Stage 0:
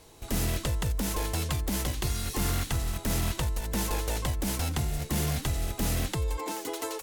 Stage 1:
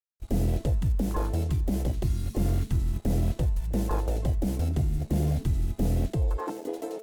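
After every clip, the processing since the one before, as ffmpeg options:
-af "afwtdn=0.0316,aeval=exprs='sgn(val(0))*max(abs(val(0))-0.00119,0)':c=same,bandreject=f=220.5:t=h:w=4,bandreject=f=441:t=h:w=4,bandreject=f=661.5:t=h:w=4,bandreject=f=882:t=h:w=4,bandreject=f=1102.5:t=h:w=4,bandreject=f=1323:t=h:w=4,bandreject=f=1543.5:t=h:w=4,bandreject=f=1764:t=h:w=4,bandreject=f=1984.5:t=h:w=4,bandreject=f=2205:t=h:w=4,bandreject=f=2425.5:t=h:w=4,bandreject=f=2646:t=h:w=4,bandreject=f=2866.5:t=h:w=4,bandreject=f=3087:t=h:w=4,bandreject=f=3307.5:t=h:w=4,bandreject=f=3528:t=h:w=4,bandreject=f=3748.5:t=h:w=4,bandreject=f=3969:t=h:w=4,bandreject=f=4189.5:t=h:w=4,bandreject=f=4410:t=h:w=4,bandreject=f=4630.5:t=h:w=4,bandreject=f=4851:t=h:w=4,bandreject=f=5071.5:t=h:w=4,bandreject=f=5292:t=h:w=4,bandreject=f=5512.5:t=h:w=4,bandreject=f=5733:t=h:w=4,bandreject=f=5953.5:t=h:w=4,bandreject=f=6174:t=h:w=4,bandreject=f=6394.5:t=h:w=4,bandreject=f=6615:t=h:w=4,bandreject=f=6835.5:t=h:w=4,bandreject=f=7056:t=h:w=4,bandreject=f=7276.5:t=h:w=4,bandreject=f=7497:t=h:w=4,bandreject=f=7717.5:t=h:w=4,bandreject=f=7938:t=h:w=4,bandreject=f=8158.5:t=h:w=4,bandreject=f=8379:t=h:w=4,bandreject=f=8599.5:t=h:w=4,bandreject=f=8820:t=h:w=4,volume=1.68"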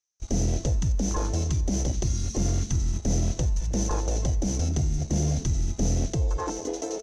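-filter_complex "[0:a]asplit=2[s0][s1];[s1]alimiter=level_in=1.12:limit=0.0631:level=0:latency=1:release=96,volume=0.891,volume=1.19[s2];[s0][s2]amix=inputs=2:normalize=0,lowpass=f=6100:t=q:w=15,asplit=2[s3][s4];[s4]adelay=222,lowpass=f=1200:p=1,volume=0.126,asplit=2[s5][s6];[s6]adelay=222,lowpass=f=1200:p=1,volume=0.33,asplit=2[s7][s8];[s8]adelay=222,lowpass=f=1200:p=1,volume=0.33[s9];[s3][s5][s7][s9]amix=inputs=4:normalize=0,volume=0.668"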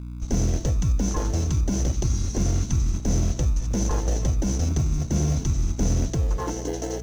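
-filter_complex "[0:a]aeval=exprs='val(0)+0.0178*(sin(2*PI*60*n/s)+sin(2*PI*2*60*n/s)/2+sin(2*PI*3*60*n/s)/3+sin(2*PI*4*60*n/s)/4+sin(2*PI*5*60*n/s)/5)':c=same,asplit=2[s0][s1];[s1]acrusher=samples=36:mix=1:aa=0.000001,volume=0.299[s2];[s0][s2]amix=inputs=2:normalize=0"

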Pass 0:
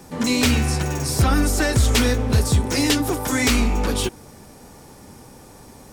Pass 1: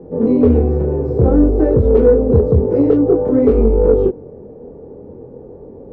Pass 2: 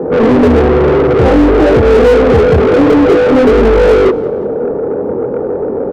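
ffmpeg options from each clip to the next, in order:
-af "flanger=delay=22.5:depth=2.5:speed=0.53,lowpass=f=460:t=q:w=4.9,acontrast=32,volume=1.26"
-filter_complex "[0:a]asoftclip=type=hard:threshold=0.422,asplit=2[s0][s1];[s1]highpass=f=720:p=1,volume=28.2,asoftclip=type=tanh:threshold=0.422[s2];[s0][s2]amix=inputs=2:normalize=0,lowpass=f=1600:p=1,volume=0.501,aecho=1:1:177|354|531:0.0841|0.0395|0.0186,volume=1.78"

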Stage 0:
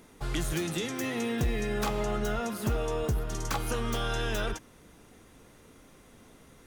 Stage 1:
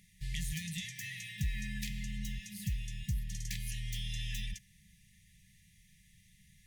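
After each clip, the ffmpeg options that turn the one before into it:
-af "afftfilt=real='re*(1-between(b*sr/4096,210,1700))':imag='im*(1-between(b*sr/4096,210,1700))':win_size=4096:overlap=0.75,volume=0.562"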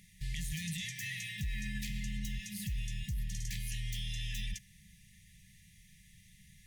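-af "alimiter=level_in=2.99:limit=0.0631:level=0:latency=1:release=16,volume=0.335,volume=1.5"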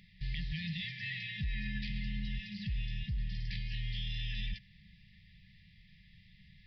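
-af "aresample=11025,aresample=44100,volume=1.12"

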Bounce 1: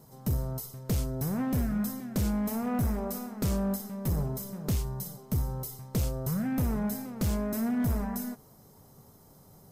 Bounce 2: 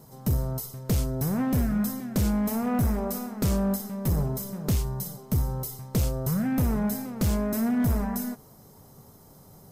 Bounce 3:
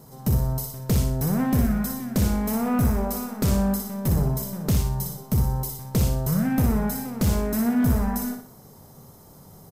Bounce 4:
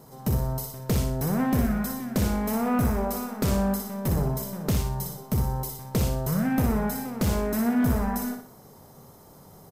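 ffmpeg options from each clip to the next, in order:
-af "acontrast=67,volume=0.75"
-af "aecho=1:1:60|120|180|240:0.473|0.17|0.0613|0.0221,volume=1.33"
-af "bass=f=250:g=-5,treble=f=4000:g=-4,volume=1.12"

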